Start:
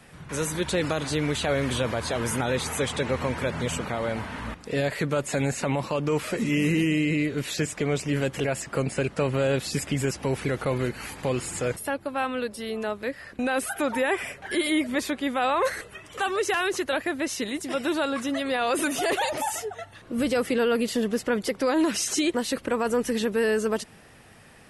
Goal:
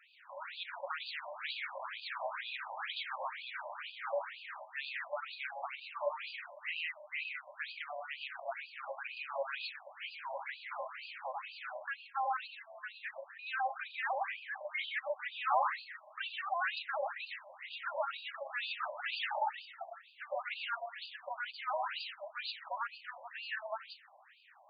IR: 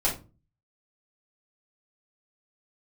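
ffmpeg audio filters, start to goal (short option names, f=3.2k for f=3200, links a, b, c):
-filter_complex "[0:a]asplit=2[a][b];[b]adynamicequalizer=threshold=0.0112:dfrequency=670:dqfactor=1.6:tfrequency=670:tqfactor=1.6:attack=5:release=100:ratio=0.375:range=2:mode=cutabove:tftype=bell[c];[1:a]atrim=start_sample=2205,afade=t=out:st=0.44:d=0.01,atrim=end_sample=19845,adelay=95[d];[c][d]afir=irnorm=-1:irlink=0,volume=-11.5dB[e];[a][e]amix=inputs=2:normalize=0,afftfilt=real='re*between(b*sr/1024,750*pow(3500/750,0.5+0.5*sin(2*PI*2.1*pts/sr))/1.41,750*pow(3500/750,0.5+0.5*sin(2*PI*2.1*pts/sr))*1.41)':imag='im*between(b*sr/1024,750*pow(3500/750,0.5+0.5*sin(2*PI*2.1*pts/sr))/1.41,750*pow(3500/750,0.5+0.5*sin(2*PI*2.1*pts/sr))*1.41)':win_size=1024:overlap=0.75,volume=-5dB"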